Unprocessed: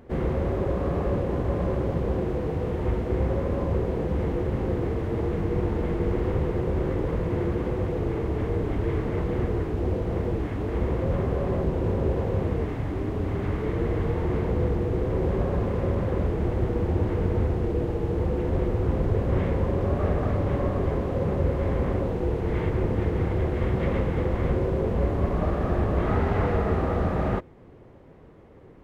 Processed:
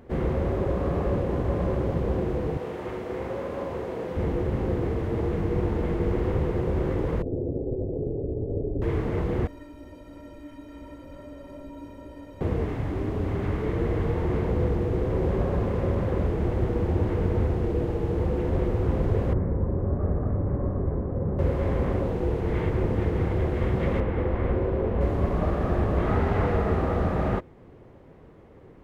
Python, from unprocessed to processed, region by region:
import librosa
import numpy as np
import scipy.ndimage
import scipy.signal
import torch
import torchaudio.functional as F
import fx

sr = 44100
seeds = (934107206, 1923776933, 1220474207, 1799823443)

y = fx.chain(x, sr, fx.highpass(hz=500.0, slope=6),
    fx.room_flutter(wall_m=7.4, rt60_s=0.28), at=(2.57, 4.17))
y = fx.chain(y, sr, fx.lower_of_two(delay_ms=2.5),
    fx.ellip_lowpass(hz=580.0, order=4, stop_db=80),
    fx.comb(ms=7.4, depth=0.38), at=(7.22, 8.82))
y = fx.chain(y, sr, fx.high_shelf(hz=3500.0, db=8.0),
    fx.stiff_resonator(f0_hz=280.0, decay_s=0.22, stiffness=0.03), at=(9.47, 12.41))
y = fx.chain(y, sr, fx.bessel_lowpass(hz=990.0, order=6),
    fx.peak_eq(hz=720.0, db=-5.5, octaves=2.2), at=(19.33, 21.39))
y = fx.chain(y, sr, fx.lowpass(hz=2800.0, slope=12),
    fx.peak_eq(hz=150.0, db=-7.5, octaves=0.41), at=(24.0, 25.01))